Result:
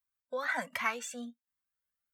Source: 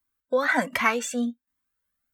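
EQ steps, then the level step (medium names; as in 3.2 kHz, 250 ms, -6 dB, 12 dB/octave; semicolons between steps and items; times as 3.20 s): bass shelf 110 Hz -7 dB; peaking EQ 330 Hz -14.5 dB 0.75 oct; -9.0 dB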